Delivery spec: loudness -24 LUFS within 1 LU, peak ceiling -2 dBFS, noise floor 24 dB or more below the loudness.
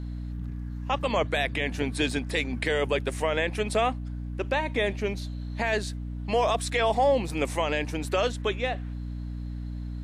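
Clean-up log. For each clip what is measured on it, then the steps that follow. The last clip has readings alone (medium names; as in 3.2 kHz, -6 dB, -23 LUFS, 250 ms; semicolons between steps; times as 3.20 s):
hum 60 Hz; highest harmonic 300 Hz; hum level -32 dBFS; loudness -28.0 LUFS; peak level -12.5 dBFS; loudness target -24.0 LUFS
-> hum notches 60/120/180/240/300 Hz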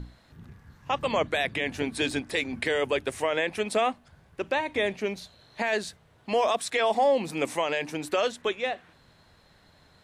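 hum not found; loudness -28.0 LUFS; peak level -13.5 dBFS; loudness target -24.0 LUFS
-> trim +4 dB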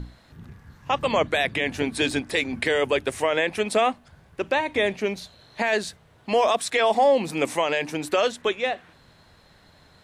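loudness -24.0 LUFS; peak level -9.5 dBFS; noise floor -56 dBFS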